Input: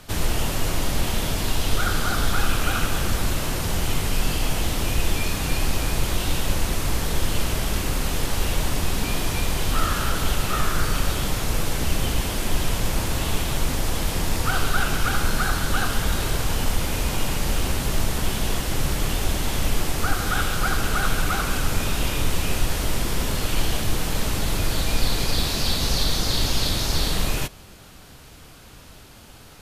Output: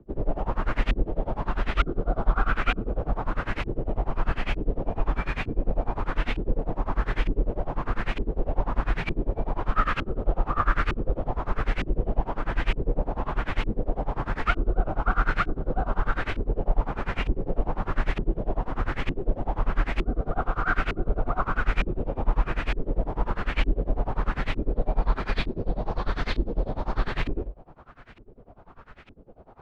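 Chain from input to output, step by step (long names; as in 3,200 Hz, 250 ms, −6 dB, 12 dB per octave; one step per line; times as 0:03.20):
frequency shifter −47 Hz
auto-filter low-pass saw up 1.1 Hz 320–2,500 Hz
amplitude tremolo 10 Hz, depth 94%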